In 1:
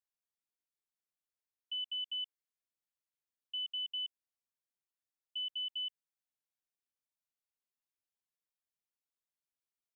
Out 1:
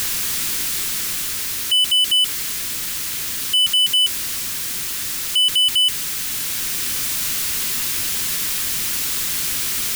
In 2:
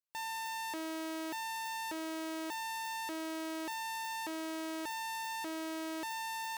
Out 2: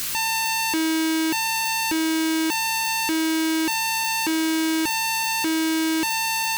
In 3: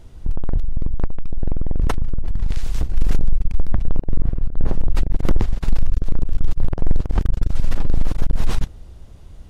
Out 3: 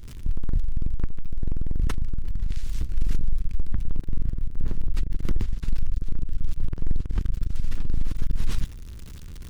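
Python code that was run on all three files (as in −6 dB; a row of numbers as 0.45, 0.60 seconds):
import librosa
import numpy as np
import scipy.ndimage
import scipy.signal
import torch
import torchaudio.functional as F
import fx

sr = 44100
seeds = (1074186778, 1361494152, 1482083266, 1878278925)

y = x + 0.5 * 10.0 ** (-32.0 / 20.0) * np.sign(x)
y = fx.peak_eq(y, sr, hz=690.0, db=-13.5, octaves=1.3)
y = fx.rider(y, sr, range_db=3, speed_s=2.0)
y = librosa.util.normalize(y) * 10.0 ** (-12 / 20.0)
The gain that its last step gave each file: +17.5, +14.5, −6.5 decibels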